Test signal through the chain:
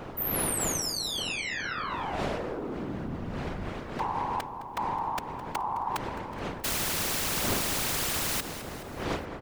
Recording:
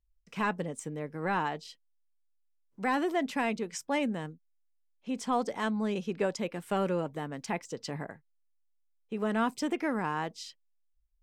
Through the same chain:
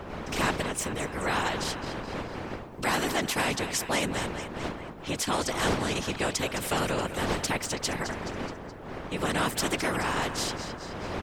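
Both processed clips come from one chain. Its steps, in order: wind noise 380 Hz -40 dBFS; whisperiser; on a send: feedback echo 0.212 s, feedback 52%, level -18 dB; on the sum: spectral compressor 2:1

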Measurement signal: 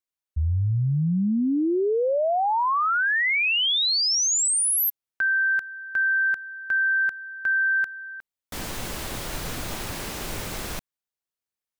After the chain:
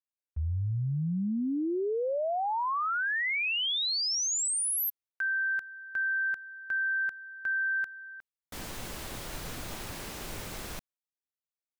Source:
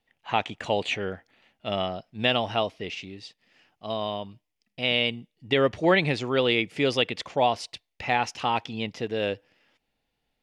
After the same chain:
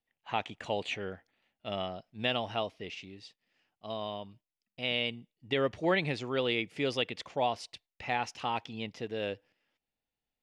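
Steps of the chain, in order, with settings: gate -51 dBFS, range -6 dB; gain -7.5 dB

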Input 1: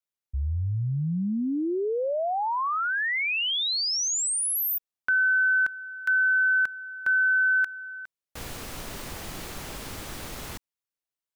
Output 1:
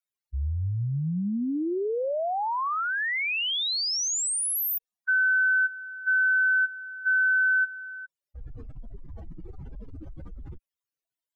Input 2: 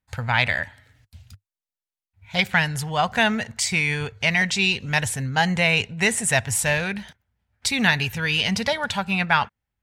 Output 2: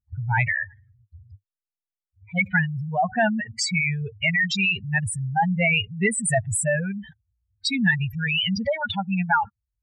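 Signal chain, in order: spectral contrast raised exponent 3.9

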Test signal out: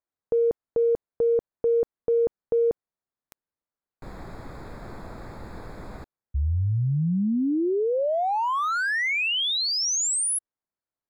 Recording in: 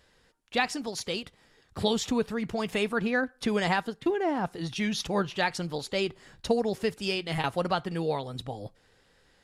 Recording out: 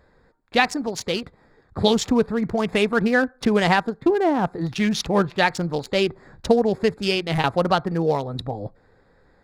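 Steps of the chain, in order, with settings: Wiener smoothing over 15 samples; gain +8.5 dB

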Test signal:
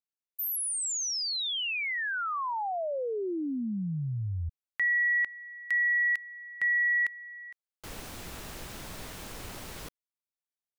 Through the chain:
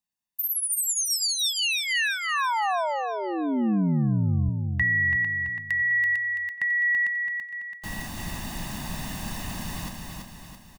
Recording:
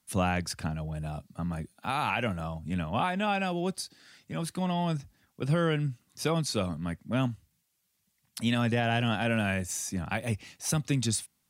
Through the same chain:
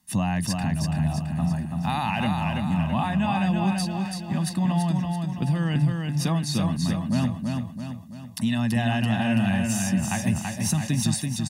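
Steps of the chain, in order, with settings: bell 200 Hz +8 dB 0.79 oct; comb 1.1 ms, depth 70%; compressor 3:1, threshold -26 dBFS; feedback echo 0.333 s, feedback 50%, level -4 dB; sustainer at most 130 dB/s; gain +3 dB

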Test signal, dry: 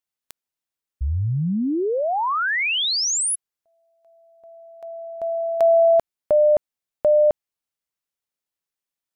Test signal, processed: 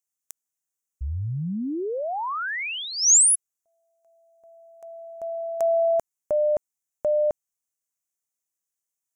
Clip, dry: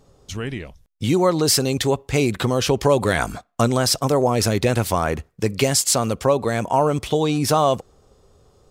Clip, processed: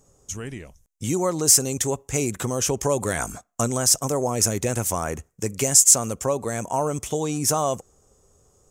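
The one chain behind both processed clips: resonant high shelf 5300 Hz +8 dB, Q 3; gain -6 dB

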